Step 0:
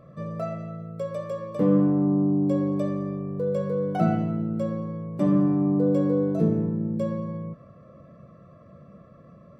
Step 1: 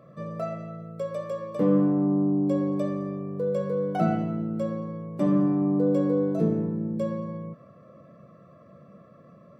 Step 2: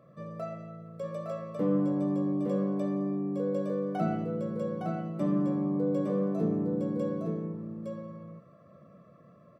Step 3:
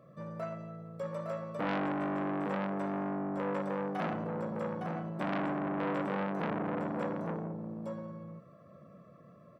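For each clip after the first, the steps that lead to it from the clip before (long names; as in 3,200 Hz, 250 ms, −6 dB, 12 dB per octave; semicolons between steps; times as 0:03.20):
Bessel high-pass filter 160 Hz
single-tap delay 861 ms −4 dB; level −6 dB
saturating transformer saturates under 1,500 Hz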